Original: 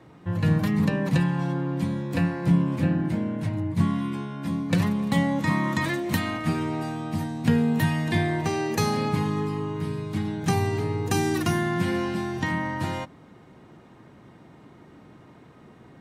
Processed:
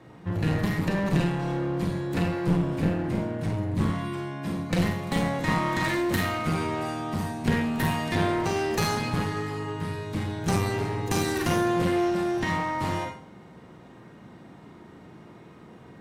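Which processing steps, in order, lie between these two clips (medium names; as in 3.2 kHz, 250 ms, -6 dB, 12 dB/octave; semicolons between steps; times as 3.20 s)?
Schroeder reverb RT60 0.45 s, combs from 33 ms, DRR 1.5 dB; one-sided clip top -28 dBFS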